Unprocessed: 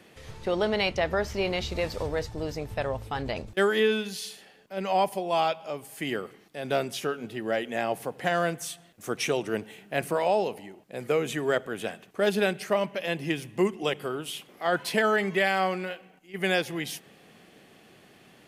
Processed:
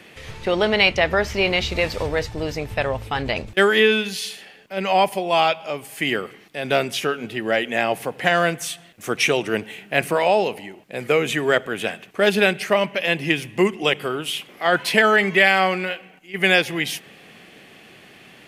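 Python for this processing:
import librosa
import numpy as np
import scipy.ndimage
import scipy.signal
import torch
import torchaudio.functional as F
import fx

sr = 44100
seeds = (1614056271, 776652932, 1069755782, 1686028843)

y = fx.peak_eq(x, sr, hz=2400.0, db=7.0, octaves=1.2)
y = y * 10.0 ** (6.0 / 20.0)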